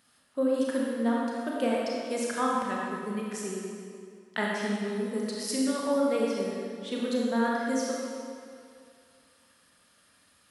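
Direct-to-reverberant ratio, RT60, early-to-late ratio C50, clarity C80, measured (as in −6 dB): −4.0 dB, 2.4 s, −2.0 dB, −0.5 dB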